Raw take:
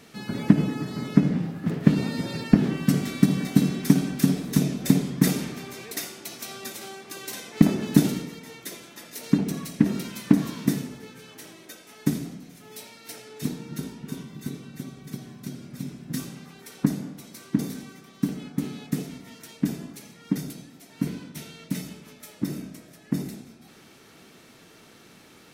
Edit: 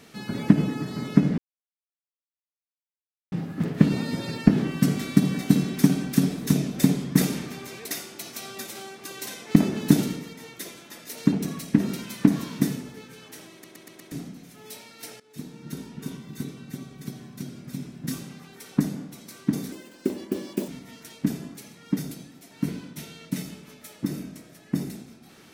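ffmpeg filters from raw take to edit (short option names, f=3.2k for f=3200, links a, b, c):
-filter_complex "[0:a]asplit=10[a][b][c][d][e][f][g][h][i][j];[a]atrim=end=1.38,asetpts=PTS-STARTPTS,afade=t=out:st=1.376:d=0.004:c=hsin,apad=pad_dur=1.94[k];[b]atrim=start=1.38:end=11.702,asetpts=PTS-STARTPTS,afade=t=in:d=0.004:c=hsin[l];[c]atrim=start=11.578:end=11.702[m];[d]atrim=start=11.578:end=11.702[n];[e]atrim=start=11.578:end=11.702[o];[f]atrim=start=11.578:end=11.702[p];[g]atrim=start=12.178:end=13.26,asetpts=PTS-STARTPTS,afade=t=out:st=1.078:d=0.004:c=hsin:silence=0.11885[q];[h]atrim=start=13.26:end=17.784,asetpts=PTS-STARTPTS,afade=t=in:d=0.77:silence=0.11885[r];[i]atrim=start=17.78:end=19.07,asetpts=PTS-STARTPTS,asetrate=59094,aresample=44100,atrim=end_sample=42454,asetpts=PTS-STARTPTS[s];[j]atrim=start=19.066[t];[k][l]concat=n=2:v=0:a=1[u];[u][m]acrossfade=d=0.004:c1=hsin:c2=hsin[v];[v][n]acrossfade=d=0.004:c1=hsin:c2=hsin[w];[w][o]acrossfade=d=0.004:c1=hsin:c2=hsin[x];[x][p]acrossfade=d=0.004:c1=hsin:c2=hsin[y];[q][r]concat=n=2:v=0:a=1[z];[y][z]acrossfade=d=0.004:c1=hsin:c2=hsin[aa];[aa][s]acrossfade=d=0.004:c1=hsin:c2=hsin[ab];[ab][t]acrossfade=d=0.004:c1=hsin:c2=hsin"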